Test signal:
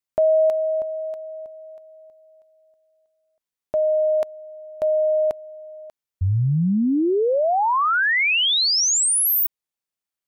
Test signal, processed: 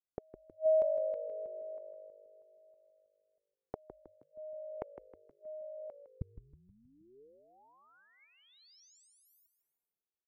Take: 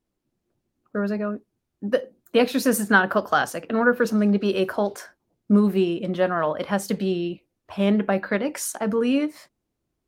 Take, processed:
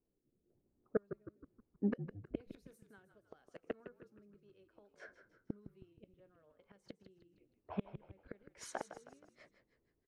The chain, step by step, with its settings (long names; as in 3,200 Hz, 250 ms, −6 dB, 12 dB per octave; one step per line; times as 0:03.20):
low-pass that shuts in the quiet parts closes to 870 Hz, open at −17.5 dBFS
gate with flip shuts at −19 dBFS, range −40 dB
rotating-speaker cabinet horn 1 Hz
hollow resonant body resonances 430/2,200 Hz, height 7 dB, ringing for 25 ms
on a send: echo with shifted repeats 158 ms, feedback 46%, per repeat −51 Hz, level −11 dB
on the sum: level −4 dB